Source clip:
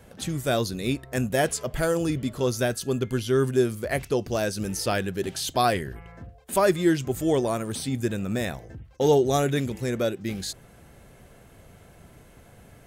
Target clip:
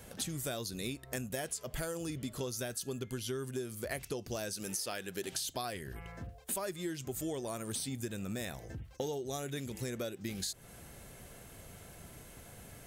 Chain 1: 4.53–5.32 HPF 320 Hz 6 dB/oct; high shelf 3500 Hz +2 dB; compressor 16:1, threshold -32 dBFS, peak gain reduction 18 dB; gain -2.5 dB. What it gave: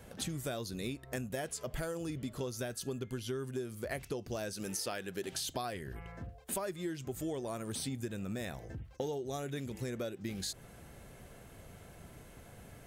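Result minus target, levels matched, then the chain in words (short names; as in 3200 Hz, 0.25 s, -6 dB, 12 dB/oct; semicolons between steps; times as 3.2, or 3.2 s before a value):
8000 Hz band -2.5 dB
4.53–5.32 HPF 320 Hz 6 dB/oct; high shelf 3500 Hz +10 dB; compressor 16:1, threshold -32 dBFS, peak gain reduction 18 dB; gain -2.5 dB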